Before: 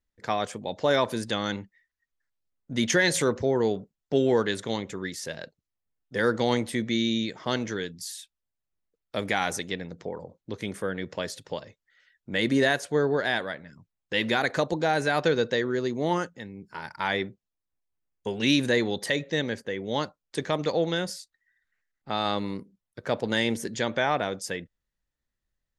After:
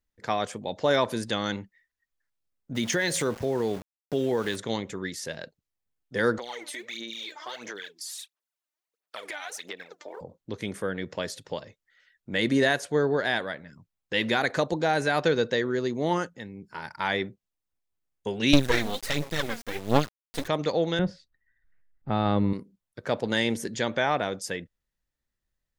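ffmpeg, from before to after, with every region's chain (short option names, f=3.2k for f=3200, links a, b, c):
-filter_complex "[0:a]asettb=1/sr,asplit=3[a][b][c];[a]atrim=end=2.754[d];[b]atrim=start=2.75:end=4.56,asetpts=PTS-STARTPTS,afade=t=in:d=0.004:c=qsin,afade=t=out:st=1.806:d=0.004:c=qsin,aeval=exprs='val(0)*gte(abs(val(0)),0.0133)':c=same,acompressor=threshold=-24dB:ratio=2:attack=3.2:release=140:knee=1:detection=peak[e];[c]atrim=start=4.556[f];[d][e]acrossfade=d=0.004:c1=hsin:c2=qsin[g];[g][f]acrossfade=d=0.004:c1=qsin:c2=hsin,asettb=1/sr,asplit=3[h][i][j];[h]atrim=end=6.384[k];[i]atrim=start=6.38:end=10.21,asetpts=PTS-STARTPTS,afade=t=in:d=0.004:c=qsin,afade=t=out:st=3.826:d=0.004:c=qsin,aphaser=in_gain=1:out_gain=1:delay=3.4:decay=0.73:speed=1.5:type=sinusoidal,highpass=640,acompressor=threshold=-34dB:ratio=5:attack=3.2:release=140:knee=1:detection=peak[l];[j]atrim=start=10.206[m];[k][l]acrossfade=d=0.004:c1=hsin:c2=qsin[n];[n][m]acrossfade=d=0.004:c1=qsin:c2=hsin,asettb=1/sr,asplit=3[o][p][q];[o]atrim=end=18.534[r];[p]atrim=start=18.53:end=20.48,asetpts=PTS-STARTPTS,afade=t=in:d=0.004:c=qsin,afade=t=out:st=1.946:d=0.004:c=qsin,aphaser=in_gain=1:out_gain=1:delay=4.3:decay=0.72:speed=1.4:type=sinusoidal,aeval=exprs='max(val(0),0)':c=same,acrusher=bits=4:dc=4:mix=0:aa=0.000001[s];[q]atrim=start=20.476[t];[r][s]acrossfade=d=0.004:c1=hsin:c2=qsin[u];[u][t]acrossfade=d=0.004:c1=qsin:c2=hsin,asettb=1/sr,asplit=3[v][w][x];[v]atrim=end=20.994[y];[w]atrim=start=20.99:end=22.53,asetpts=PTS-STARTPTS,afade=t=in:d=0.004:c=qsin,afade=t=out:st=1.536:d=0.004:c=qsin,lowpass=4k,aemphasis=mode=reproduction:type=riaa[z];[x]atrim=start=22.526[aa];[y][z]acrossfade=d=0.004:c1=hsin:c2=qsin[ab];[ab][aa]acrossfade=d=0.004:c1=qsin:c2=hsin"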